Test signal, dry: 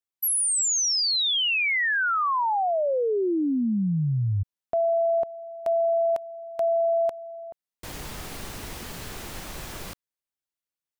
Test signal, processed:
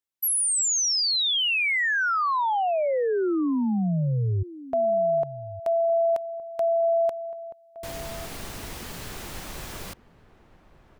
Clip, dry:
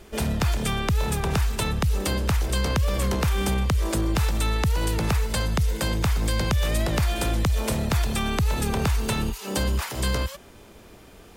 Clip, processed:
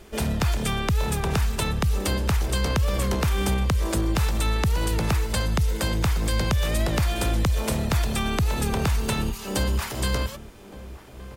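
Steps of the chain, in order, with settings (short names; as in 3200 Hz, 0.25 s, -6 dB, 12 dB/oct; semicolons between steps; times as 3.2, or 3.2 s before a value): outdoor echo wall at 200 m, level -16 dB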